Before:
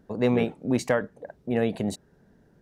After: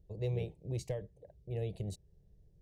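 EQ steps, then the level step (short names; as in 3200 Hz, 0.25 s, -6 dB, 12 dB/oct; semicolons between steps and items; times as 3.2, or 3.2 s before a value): passive tone stack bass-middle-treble 10-0-1; high shelf 4200 Hz -5 dB; fixed phaser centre 590 Hz, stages 4; +12.0 dB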